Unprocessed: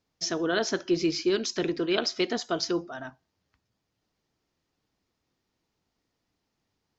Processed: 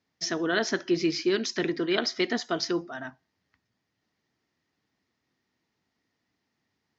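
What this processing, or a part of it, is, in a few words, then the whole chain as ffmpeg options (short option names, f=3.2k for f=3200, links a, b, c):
car door speaker: -filter_complex "[0:a]highpass=90,equalizer=f=240:t=q:w=4:g=3,equalizer=f=520:t=q:w=4:g=-3,equalizer=f=1.9k:t=q:w=4:g=8,lowpass=f=6.8k:w=0.5412,lowpass=f=6.8k:w=1.3066,asettb=1/sr,asplit=3[a][b][c];[a]atrim=end=1.684[d];[b]atrim=start=1.68:end=2.24,asetpts=PTS-STARTPTS,afade=t=in:d=0.004:c=qsin,afade=t=out:st=0.556:d=0.004:c=qsin,bandreject=f=2.6k:w=11[e];[c]atrim=start=2.236[f];[d][e]acrossfade=d=0.004:c1=hsin:c2=qsin[g];[g][f]acrossfade=d=0.004:c1=qsin:c2=hsin"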